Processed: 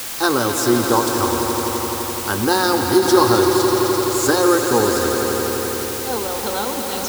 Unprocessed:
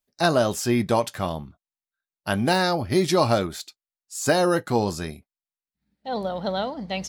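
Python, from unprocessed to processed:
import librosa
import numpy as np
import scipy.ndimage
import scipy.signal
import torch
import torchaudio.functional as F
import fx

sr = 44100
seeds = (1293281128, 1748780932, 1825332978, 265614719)

p1 = fx.fixed_phaser(x, sr, hz=640.0, stages=6)
p2 = p1 + fx.echo_swell(p1, sr, ms=85, loudest=5, wet_db=-10.0, dry=0)
p3 = fx.quant_dither(p2, sr, seeds[0], bits=6, dither='triangular')
p4 = fx.end_taper(p3, sr, db_per_s=160.0)
y = p4 * librosa.db_to_amplitude(7.5)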